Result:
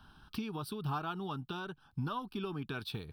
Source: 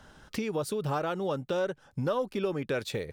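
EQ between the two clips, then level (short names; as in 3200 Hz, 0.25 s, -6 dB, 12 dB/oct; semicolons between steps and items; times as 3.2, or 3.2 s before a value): fixed phaser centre 2000 Hz, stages 6; -2.5 dB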